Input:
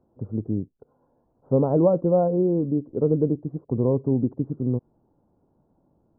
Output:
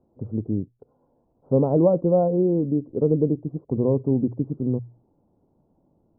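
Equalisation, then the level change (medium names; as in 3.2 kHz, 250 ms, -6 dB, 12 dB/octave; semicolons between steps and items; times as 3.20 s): low-pass 1 kHz 12 dB/octave; hum notches 60/120 Hz; +1.0 dB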